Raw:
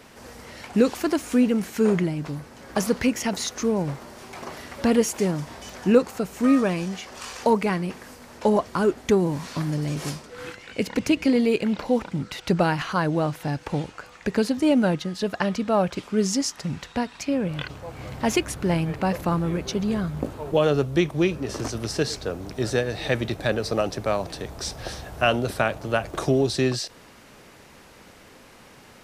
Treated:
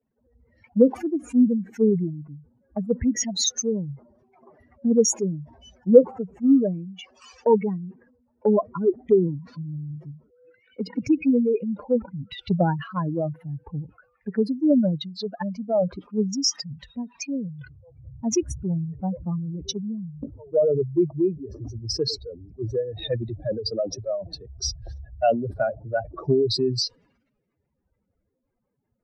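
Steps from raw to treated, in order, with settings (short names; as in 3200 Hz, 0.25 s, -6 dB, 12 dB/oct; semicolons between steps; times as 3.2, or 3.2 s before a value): spectral contrast raised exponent 3.2; three-band expander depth 100%; gain -1.5 dB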